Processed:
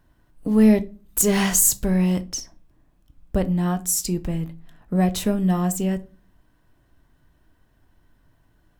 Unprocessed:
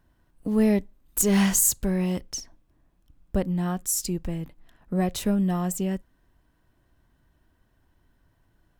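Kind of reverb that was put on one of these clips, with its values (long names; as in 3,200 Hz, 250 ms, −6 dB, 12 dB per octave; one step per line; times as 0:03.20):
rectangular room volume 190 cubic metres, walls furnished, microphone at 0.42 metres
level +3.5 dB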